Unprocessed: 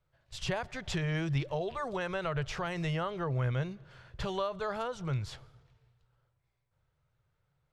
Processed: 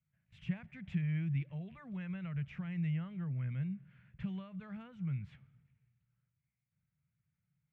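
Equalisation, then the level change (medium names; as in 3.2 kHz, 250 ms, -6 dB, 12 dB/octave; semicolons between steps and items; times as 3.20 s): high-pass 82 Hz; dynamic bell 1.5 kHz, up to -3 dB, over -45 dBFS, Q 0.88; FFT filter 120 Hz 0 dB, 190 Hz +11 dB, 400 Hz -17 dB, 1 kHz -15 dB, 2.3 kHz +1 dB, 4.6 kHz -25 dB; -6.5 dB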